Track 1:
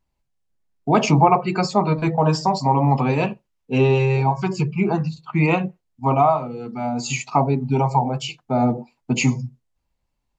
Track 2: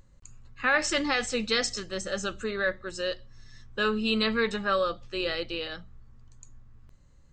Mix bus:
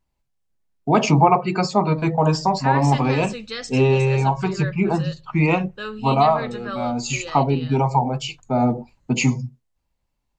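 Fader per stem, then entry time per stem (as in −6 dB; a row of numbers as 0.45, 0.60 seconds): 0.0, −5.0 decibels; 0.00, 2.00 seconds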